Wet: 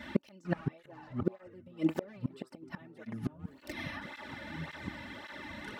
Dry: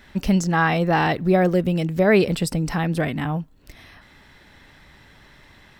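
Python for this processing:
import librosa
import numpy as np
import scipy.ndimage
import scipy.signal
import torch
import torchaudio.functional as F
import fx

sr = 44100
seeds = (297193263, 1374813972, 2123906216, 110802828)

y = np.minimum(x, 2.0 * 10.0 ** (-12.5 / 20.0) - x)
y = scipy.signal.sosfilt(scipy.signal.butter(2, 70.0, 'highpass', fs=sr, output='sos'), y)
y = fx.high_shelf(y, sr, hz=4500.0, db=-11.5)
y = y + 0.67 * np.pad(y, (int(3.4 * sr / 1000.0), 0))[:len(y)]
y = fx.rider(y, sr, range_db=3, speed_s=0.5)
y = fx.gate_flip(y, sr, shuts_db=-16.0, range_db=-36)
y = fx.echo_pitch(y, sr, ms=450, semitones=-6, count=2, db_per_echo=-6.0)
y = fx.flanger_cancel(y, sr, hz=1.8, depth_ms=2.8)
y = F.gain(torch.from_numpy(y), 5.5).numpy()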